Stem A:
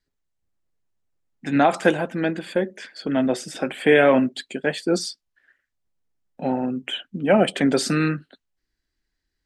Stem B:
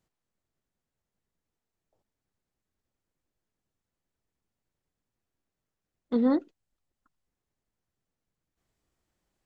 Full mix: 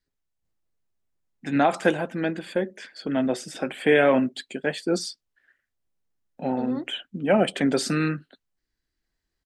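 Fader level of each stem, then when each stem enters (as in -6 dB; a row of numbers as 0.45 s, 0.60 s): -3.0 dB, -8.0 dB; 0.00 s, 0.45 s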